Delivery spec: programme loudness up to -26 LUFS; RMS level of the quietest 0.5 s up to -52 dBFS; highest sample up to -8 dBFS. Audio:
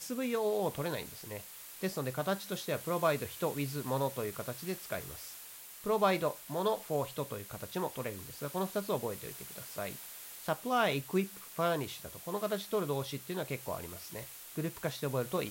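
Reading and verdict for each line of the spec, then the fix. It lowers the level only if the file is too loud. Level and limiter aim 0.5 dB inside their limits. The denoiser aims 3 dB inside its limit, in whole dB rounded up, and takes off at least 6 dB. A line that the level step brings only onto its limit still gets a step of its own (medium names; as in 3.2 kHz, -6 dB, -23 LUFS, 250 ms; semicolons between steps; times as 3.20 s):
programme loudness -36.0 LUFS: pass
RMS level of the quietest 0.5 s -50 dBFS: fail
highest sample -15.5 dBFS: pass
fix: noise reduction 6 dB, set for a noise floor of -50 dBFS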